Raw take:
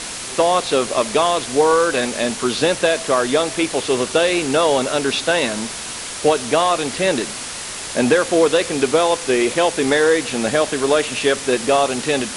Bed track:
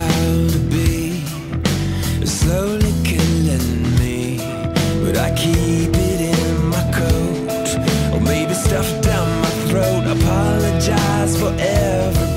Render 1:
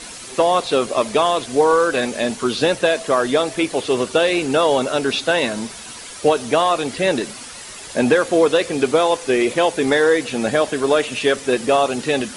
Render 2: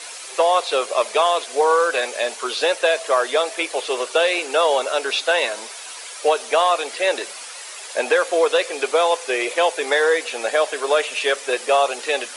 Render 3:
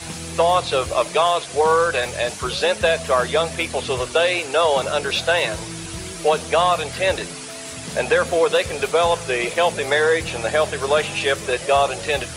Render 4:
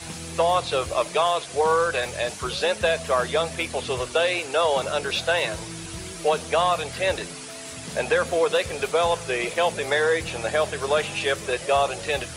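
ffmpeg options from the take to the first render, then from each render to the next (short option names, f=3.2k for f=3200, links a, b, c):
-af "afftdn=nr=9:nf=-29"
-af "highpass=f=470:w=0.5412,highpass=f=470:w=1.3066,equalizer=f=2.4k:t=o:w=0.24:g=2.5"
-filter_complex "[1:a]volume=-18dB[a];[0:a][a]amix=inputs=2:normalize=0"
-af "volume=-4dB"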